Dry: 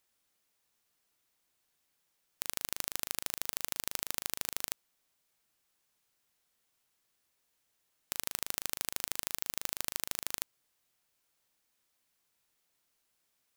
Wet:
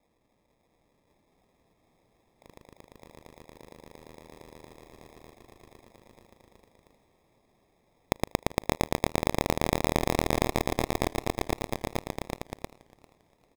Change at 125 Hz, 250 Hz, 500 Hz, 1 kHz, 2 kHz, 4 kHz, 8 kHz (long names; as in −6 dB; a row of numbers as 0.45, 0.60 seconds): +23.0, +22.5, +21.5, +15.5, +7.0, +1.5, −4.0 decibels